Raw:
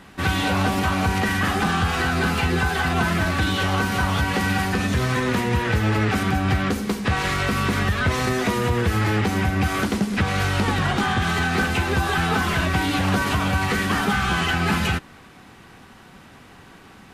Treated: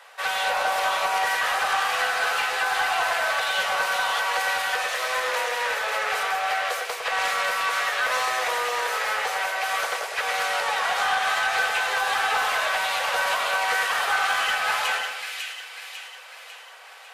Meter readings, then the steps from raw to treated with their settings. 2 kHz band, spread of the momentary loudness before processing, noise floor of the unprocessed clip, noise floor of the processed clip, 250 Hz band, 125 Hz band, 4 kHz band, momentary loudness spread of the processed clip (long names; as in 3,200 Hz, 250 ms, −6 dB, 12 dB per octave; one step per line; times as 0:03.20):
+1.0 dB, 1 LU, −47 dBFS, −44 dBFS, below −30 dB, below −35 dB, +1.0 dB, 5 LU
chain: Butterworth high-pass 480 Hz 72 dB per octave
soft clipping −16.5 dBFS, distortion −21 dB
echo with a time of its own for lows and highs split 1,900 Hz, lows 105 ms, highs 548 ms, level −4 dB